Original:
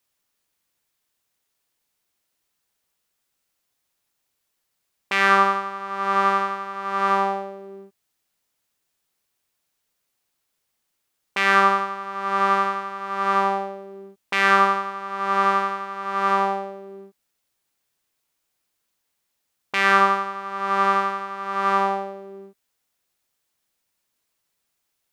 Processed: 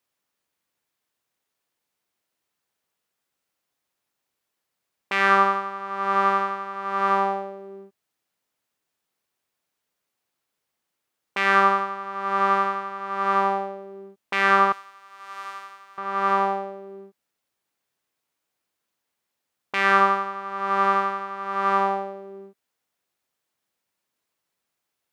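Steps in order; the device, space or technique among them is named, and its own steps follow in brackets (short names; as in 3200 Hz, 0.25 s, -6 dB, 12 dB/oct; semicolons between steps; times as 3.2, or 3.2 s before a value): HPF 130 Hz 6 dB/oct; 14.72–15.98 differentiator; behind a face mask (high shelf 2900 Hz -7 dB)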